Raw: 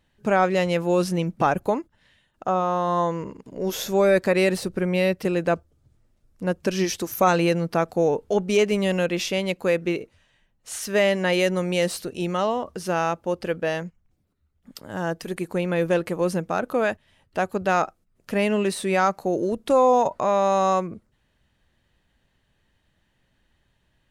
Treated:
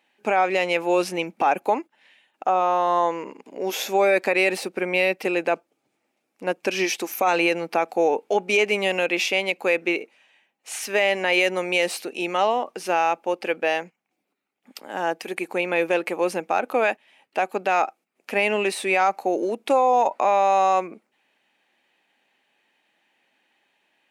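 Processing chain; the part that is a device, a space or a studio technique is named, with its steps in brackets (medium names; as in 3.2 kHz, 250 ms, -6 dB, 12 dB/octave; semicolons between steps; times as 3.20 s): laptop speaker (high-pass 260 Hz 24 dB/octave; peaking EQ 800 Hz +9 dB 0.34 oct; peaking EQ 2.4 kHz +11.5 dB 0.53 oct; peak limiter -10 dBFS, peak gain reduction 8 dB)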